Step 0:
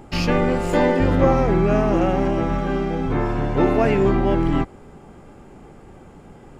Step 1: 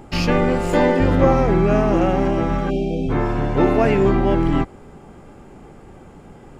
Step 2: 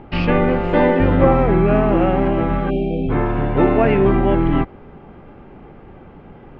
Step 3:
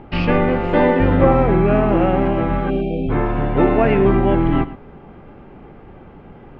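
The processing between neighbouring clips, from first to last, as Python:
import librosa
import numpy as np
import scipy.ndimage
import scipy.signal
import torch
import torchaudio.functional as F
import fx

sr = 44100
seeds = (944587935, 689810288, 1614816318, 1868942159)

y1 = fx.spec_erase(x, sr, start_s=2.7, length_s=0.39, low_hz=780.0, high_hz=2200.0)
y1 = y1 * 10.0 ** (1.5 / 20.0)
y2 = scipy.signal.sosfilt(scipy.signal.butter(4, 3200.0, 'lowpass', fs=sr, output='sos'), y1)
y2 = y2 * 10.0 ** (1.5 / 20.0)
y3 = y2 + 10.0 ** (-16.0 / 20.0) * np.pad(y2, (int(113 * sr / 1000.0), 0))[:len(y2)]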